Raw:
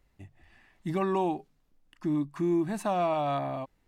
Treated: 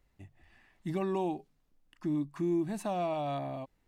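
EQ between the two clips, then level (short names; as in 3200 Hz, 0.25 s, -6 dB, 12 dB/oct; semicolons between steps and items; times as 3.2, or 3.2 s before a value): dynamic EQ 1300 Hz, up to -7 dB, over -45 dBFS, Q 1.1; -3.0 dB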